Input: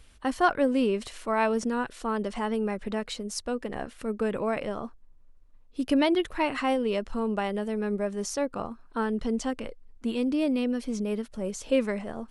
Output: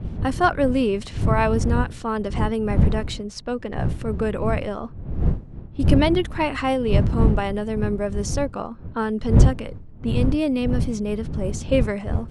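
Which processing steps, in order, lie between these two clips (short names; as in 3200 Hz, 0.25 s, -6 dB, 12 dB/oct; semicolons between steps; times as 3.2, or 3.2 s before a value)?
wind noise 120 Hz -27 dBFS; low-pass opened by the level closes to 1800 Hz, open at -23 dBFS; gain +4 dB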